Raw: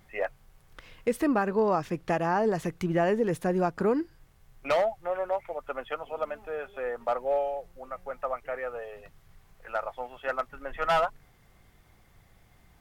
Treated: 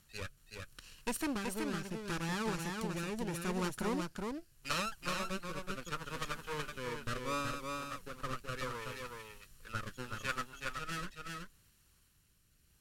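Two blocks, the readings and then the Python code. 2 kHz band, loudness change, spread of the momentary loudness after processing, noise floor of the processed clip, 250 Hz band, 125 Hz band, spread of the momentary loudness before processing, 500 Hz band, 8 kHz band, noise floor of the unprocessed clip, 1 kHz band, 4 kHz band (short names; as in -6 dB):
-4.5 dB, -10.0 dB, 10 LU, -70 dBFS, -8.0 dB, -4.5 dB, 12 LU, -15.0 dB, n/a, -60 dBFS, -10.5 dB, +2.5 dB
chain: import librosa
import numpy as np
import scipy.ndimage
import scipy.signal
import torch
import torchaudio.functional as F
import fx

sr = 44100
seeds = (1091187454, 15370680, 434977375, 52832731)

p1 = fx.lower_of_two(x, sr, delay_ms=0.7)
p2 = scipy.signal.sosfilt(scipy.signal.butter(2, 12000.0, 'lowpass', fs=sr, output='sos'), p1)
p3 = librosa.effects.preemphasis(p2, coef=0.9, zi=[0.0])
p4 = fx.rider(p3, sr, range_db=5, speed_s=2.0)
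p5 = fx.rotary(p4, sr, hz=0.75)
p6 = fx.tilt_shelf(p5, sr, db=3.0, hz=640.0)
p7 = p6 + fx.echo_single(p6, sr, ms=375, db=-4.0, dry=0)
y = p7 * 10.0 ** (10.5 / 20.0)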